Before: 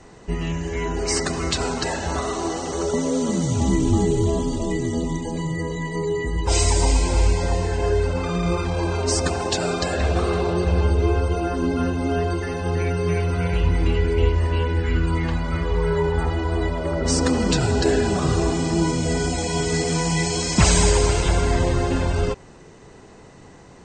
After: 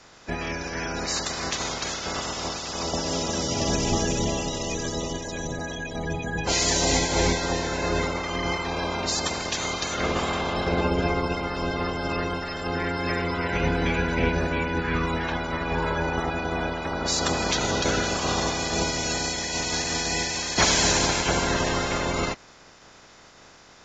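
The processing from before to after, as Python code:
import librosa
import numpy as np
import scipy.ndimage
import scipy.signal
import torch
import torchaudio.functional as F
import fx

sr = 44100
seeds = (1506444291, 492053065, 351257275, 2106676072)

y = fx.spec_clip(x, sr, under_db=21)
y = fx.formant_shift(y, sr, semitones=-3)
y = y * 10.0 ** (-5.0 / 20.0)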